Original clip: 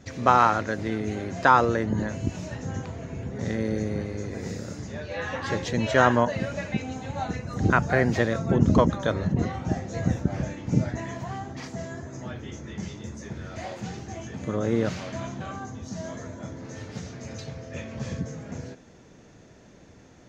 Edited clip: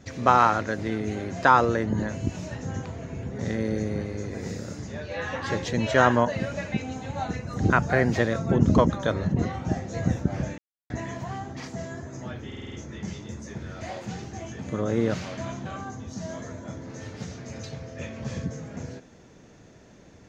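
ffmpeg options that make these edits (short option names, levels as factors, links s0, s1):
-filter_complex "[0:a]asplit=8[s0][s1][s2][s3][s4][s5][s6][s7];[s0]atrim=end=10.58,asetpts=PTS-STARTPTS,afade=t=out:st=10.576:d=0.004:c=hsin[s8];[s1]atrim=start=10.58:end=10.9,asetpts=PTS-STARTPTS,volume=0[s9];[s2]atrim=start=10.9:end=12.522,asetpts=PTS-STARTPTS,afade=t=in:d=0.004:c=hsin[s10];[s3]atrim=start=12.468:end=12.522[s11];[s4]atrim=start=12.468:end=12.522[s12];[s5]atrim=start=12.468:end=12.522[s13];[s6]atrim=start=12.468:end=12.522[s14];[s7]atrim=start=12.468[s15];[s8][s9][s10]concat=n=3:v=0:a=1[s16];[s16][s11]acrossfade=d=0.004:c1=hsin:c2=hsin[s17];[s17][s12]acrossfade=d=0.004:c1=hsin:c2=hsin[s18];[s18][s13]acrossfade=d=0.004:c1=hsin:c2=hsin[s19];[s19][s14]acrossfade=d=0.004:c1=hsin:c2=hsin[s20];[s20][s15]acrossfade=d=0.004:c1=hsin:c2=hsin"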